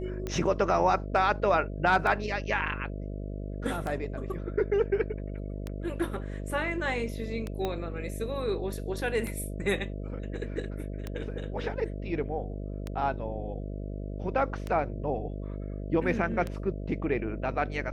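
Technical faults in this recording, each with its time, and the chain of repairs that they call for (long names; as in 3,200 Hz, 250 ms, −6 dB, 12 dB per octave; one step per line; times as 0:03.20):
mains buzz 50 Hz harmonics 13 −36 dBFS
scratch tick 33 1/3 rpm −20 dBFS
0:07.65: click −18 dBFS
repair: click removal
hum removal 50 Hz, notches 13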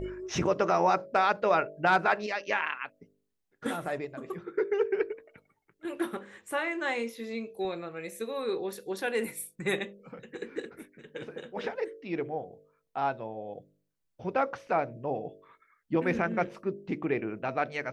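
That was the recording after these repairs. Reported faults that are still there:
0:07.65: click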